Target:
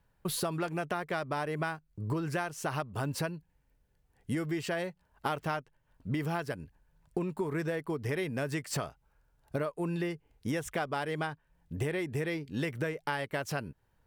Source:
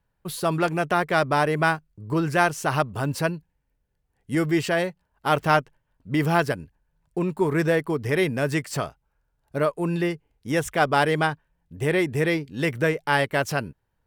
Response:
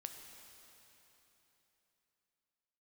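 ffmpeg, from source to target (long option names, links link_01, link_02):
-af "acompressor=threshold=-33dB:ratio=12,volume=3dB"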